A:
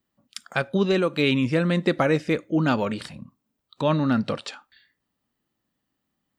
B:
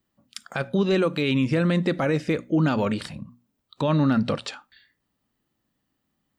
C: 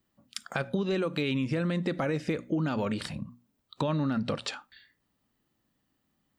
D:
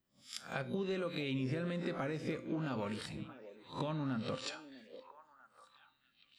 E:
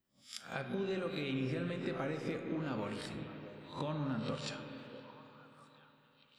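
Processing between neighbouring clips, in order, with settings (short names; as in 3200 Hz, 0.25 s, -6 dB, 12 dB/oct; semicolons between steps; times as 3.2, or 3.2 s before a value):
low shelf 190 Hz +4.5 dB; notches 60/120/180/240 Hz; limiter -15 dBFS, peak gain reduction 7.5 dB; gain +1.5 dB
compressor 6:1, threshold -26 dBFS, peak gain reduction 9 dB
spectral swells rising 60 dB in 0.32 s; resonator 130 Hz, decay 0.42 s, harmonics all, mix 60%; delay with a stepping band-pass 0.647 s, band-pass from 430 Hz, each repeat 1.4 oct, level -10 dB; gain -3 dB
reverb RT60 3.6 s, pre-delay 33 ms, DRR 5 dB; gain -1 dB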